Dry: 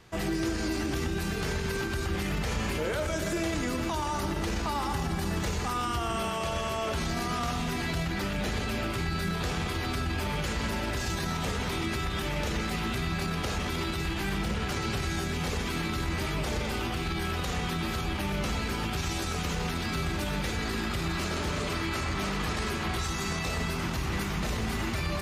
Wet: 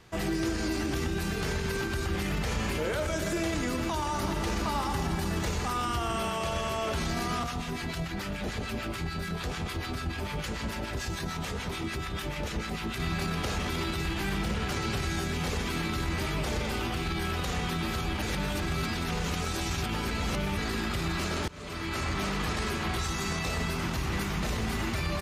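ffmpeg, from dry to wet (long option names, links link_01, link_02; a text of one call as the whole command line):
ffmpeg -i in.wav -filter_complex "[0:a]asplit=2[link_01][link_02];[link_02]afade=type=in:start_time=3.82:duration=0.01,afade=type=out:start_time=4.43:duration=0.01,aecho=0:1:380|760|1140|1520|1900|2280|2660|3040|3420:0.421697|0.274103|0.178167|0.115808|0.0752755|0.048929|0.0318039|0.0206725|0.0134371[link_03];[link_01][link_03]amix=inputs=2:normalize=0,asettb=1/sr,asplit=3[link_04][link_05][link_06];[link_04]atrim=end=7.434[link_07];[link_05]atrim=start=7.43:end=13,asetpts=PTS-STARTPTS,afade=type=in:duration=0.004:curve=qsin,afade=type=out:start_time=5.566:duration=0.004:curve=qsin,acrossover=split=950[link_08][link_09];[link_08]aeval=exprs='val(0)*(1-0.7/2+0.7/2*cos(2*PI*6.8*n/s))':channel_layout=same[link_10];[link_09]aeval=exprs='val(0)*(1-0.7/2-0.7/2*cos(2*PI*6.8*n/s))':channel_layout=same[link_11];[link_10][link_11]amix=inputs=2:normalize=0[link_12];[link_06]atrim=start=12.996[link_13];[link_07][link_12]acrossfade=duration=0.004:curve1=hsin:curve2=qsin[link_14];[link_14][link_13]acrossfade=duration=0.004:curve1=qsin:curve2=hsin,asplit=4[link_15][link_16][link_17][link_18];[link_15]atrim=end=18.222[link_19];[link_16]atrim=start=18.218:end=20.572,asetpts=PTS-STARTPTS,areverse[link_20];[link_17]atrim=start=20.568:end=21.48,asetpts=PTS-STARTPTS,afade=type=out:start_time=0.908:duration=0.004:curve=hsin:silence=0.0707946[link_21];[link_18]atrim=start=21.48,asetpts=PTS-STARTPTS,afade=type=in:duration=0.55:silence=0.0707946[link_22];[link_19][link_20]acrossfade=duration=0.004:curve1=hsin:curve2=hsin[link_23];[link_21][link_22]concat=n=2:v=0:a=1[link_24];[link_23][link_24]acrossfade=duration=0.004:curve1=hsin:curve2=hsin" out.wav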